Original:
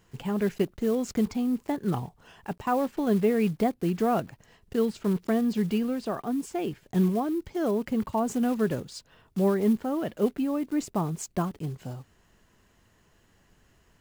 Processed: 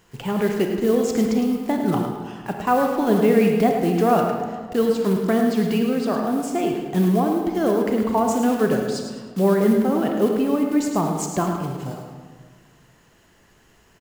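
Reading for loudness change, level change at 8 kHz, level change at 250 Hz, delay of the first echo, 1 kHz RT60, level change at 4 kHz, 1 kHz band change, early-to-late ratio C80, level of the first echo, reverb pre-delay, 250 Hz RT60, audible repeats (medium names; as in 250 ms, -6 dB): +7.0 dB, +8.5 dB, +6.5 dB, 107 ms, 1.6 s, +8.5 dB, +9.0 dB, 4.0 dB, -8.0 dB, 28 ms, 1.8 s, 1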